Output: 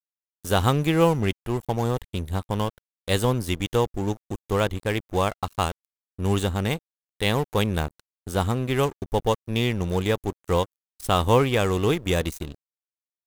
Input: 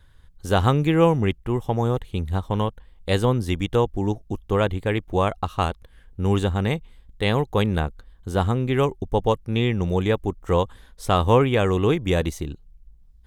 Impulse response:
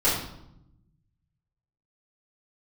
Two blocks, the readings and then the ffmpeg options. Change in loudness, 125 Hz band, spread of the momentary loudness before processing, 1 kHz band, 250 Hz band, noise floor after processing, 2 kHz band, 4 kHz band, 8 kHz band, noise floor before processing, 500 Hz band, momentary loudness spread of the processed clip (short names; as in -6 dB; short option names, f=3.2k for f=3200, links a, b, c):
-2.0 dB, -3.0 dB, 10 LU, -1.5 dB, -2.5 dB, under -85 dBFS, 0.0 dB, +1.5 dB, +5.5 dB, -52 dBFS, -2.0 dB, 11 LU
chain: -af "aeval=exprs='sgn(val(0))*max(abs(val(0))-0.015,0)':c=same,crystalizer=i=2:c=0,volume=-1.5dB"